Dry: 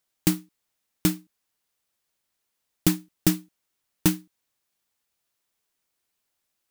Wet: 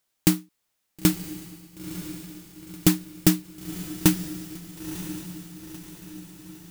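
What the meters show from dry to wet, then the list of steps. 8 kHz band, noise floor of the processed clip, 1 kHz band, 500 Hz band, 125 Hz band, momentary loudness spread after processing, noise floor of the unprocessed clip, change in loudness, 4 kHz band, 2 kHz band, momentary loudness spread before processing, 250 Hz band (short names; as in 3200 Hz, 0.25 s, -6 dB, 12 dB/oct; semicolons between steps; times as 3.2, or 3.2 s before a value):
+3.0 dB, -77 dBFS, +3.0 dB, +3.0 dB, +3.0 dB, 19 LU, -79 dBFS, 0.0 dB, +3.0 dB, +3.0 dB, 9 LU, +3.0 dB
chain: diffused feedback echo 0.971 s, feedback 52%, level -11 dB; gain +2.5 dB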